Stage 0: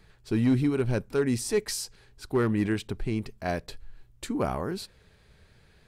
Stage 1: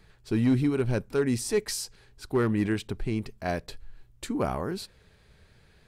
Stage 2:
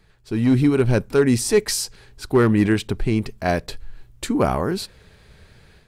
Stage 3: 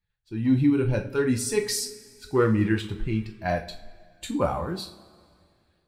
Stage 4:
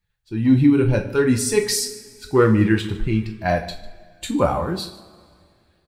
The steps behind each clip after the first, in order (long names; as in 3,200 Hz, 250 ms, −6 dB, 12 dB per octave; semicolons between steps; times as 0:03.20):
no processing that can be heard
automatic gain control gain up to 9 dB
spectral dynamics exaggerated over time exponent 1.5; coupled-rooms reverb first 0.33 s, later 2.2 s, from −21 dB, DRR 2 dB; level −5 dB
single-tap delay 150 ms −19 dB; level +6 dB